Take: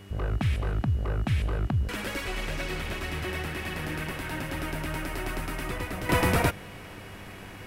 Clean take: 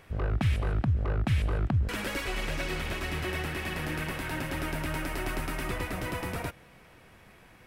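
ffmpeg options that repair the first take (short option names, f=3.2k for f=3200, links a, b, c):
-af "bandreject=f=98.4:t=h:w=4,bandreject=f=196.8:t=h:w=4,bandreject=f=295.2:t=h:w=4,bandreject=f=393.6:t=h:w=4,bandreject=f=2.9k:w=30,agate=range=-21dB:threshold=-35dB,asetnsamples=n=441:p=0,asendcmd='6.09 volume volume -11dB',volume=0dB"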